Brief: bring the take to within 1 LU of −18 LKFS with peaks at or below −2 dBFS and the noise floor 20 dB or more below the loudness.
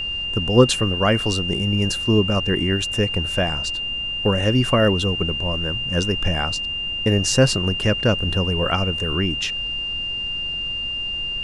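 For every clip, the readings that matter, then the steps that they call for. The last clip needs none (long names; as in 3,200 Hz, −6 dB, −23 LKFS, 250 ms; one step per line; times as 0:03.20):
interfering tone 2,800 Hz; level of the tone −24 dBFS; background noise floor −27 dBFS; target noise floor −41 dBFS; integrated loudness −20.5 LKFS; sample peak −1.0 dBFS; target loudness −18.0 LKFS
→ notch filter 2,800 Hz, Q 30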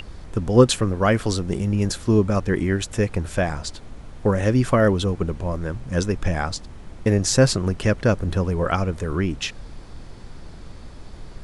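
interfering tone none found; background noise floor −40 dBFS; target noise floor −42 dBFS
→ noise reduction from a noise print 6 dB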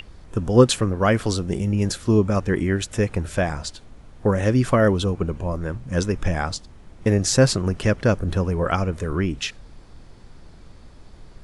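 background noise floor −46 dBFS; integrated loudness −22.0 LKFS; sample peak −1.5 dBFS; target loudness −18.0 LKFS
→ level +4 dB
brickwall limiter −2 dBFS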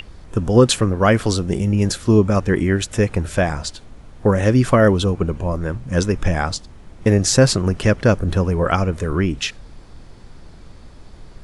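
integrated loudness −18.5 LKFS; sample peak −2.0 dBFS; background noise floor −42 dBFS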